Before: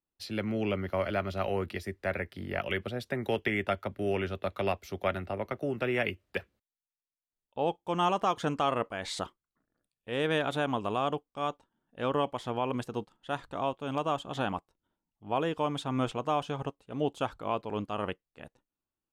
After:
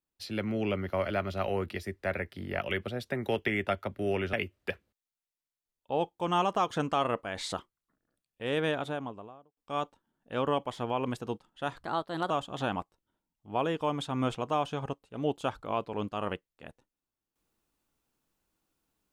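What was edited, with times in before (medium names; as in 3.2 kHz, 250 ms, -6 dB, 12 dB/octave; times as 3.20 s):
4.33–6.00 s: delete
10.15–11.24 s: studio fade out
13.51–14.07 s: speed 121%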